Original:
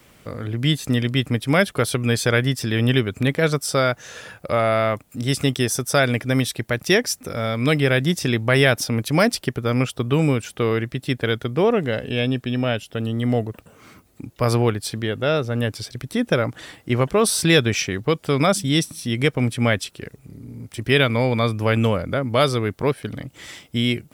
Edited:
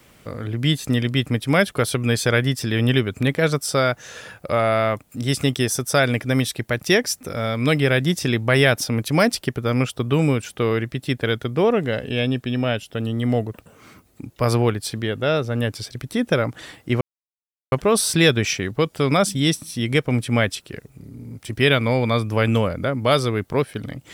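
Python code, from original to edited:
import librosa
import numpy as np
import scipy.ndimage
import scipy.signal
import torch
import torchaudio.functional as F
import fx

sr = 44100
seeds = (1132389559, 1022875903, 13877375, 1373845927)

y = fx.edit(x, sr, fx.insert_silence(at_s=17.01, length_s=0.71), tone=tone)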